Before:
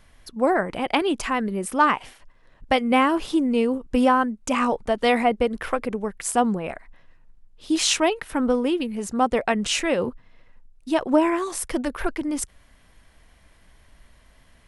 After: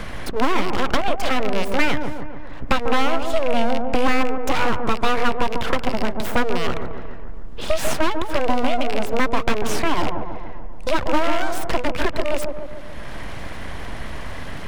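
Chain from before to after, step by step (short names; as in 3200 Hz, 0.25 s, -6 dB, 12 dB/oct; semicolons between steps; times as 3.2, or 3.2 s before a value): rattling part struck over -37 dBFS, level -20 dBFS; LPF 2600 Hz 6 dB/oct; in parallel at +1 dB: compressor, threshold -29 dBFS, peak gain reduction 15.5 dB; on the sum: full-wave rectifier; on a send: dark delay 0.143 s, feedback 40%, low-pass 980 Hz, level -5.5 dB; on the sum: three-band squash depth 70%; gain +1.5 dB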